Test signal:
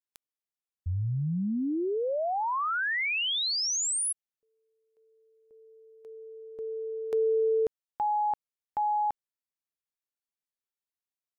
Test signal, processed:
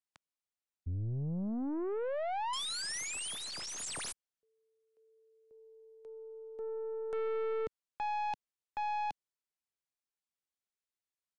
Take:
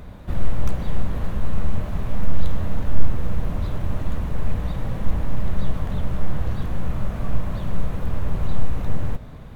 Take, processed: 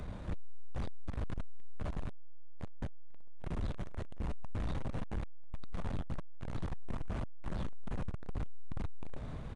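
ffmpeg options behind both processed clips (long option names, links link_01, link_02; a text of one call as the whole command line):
ffmpeg -i in.wav -filter_complex "[0:a]acrossover=split=170|850[link_01][link_02][link_03];[link_03]aeval=exprs='(mod(29.9*val(0)+1,2)-1)/29.9':channel_layout=same[link_04];[link_01][link_02][link_04]amix=inputs=3:normalize=0,aeval=exprs='(tanh(35.5*val(0)+0.3)-tanh(0.3))/35.5':channel_layout=same,aresample=22050,aresample=44100,volume=-2dB" out.wav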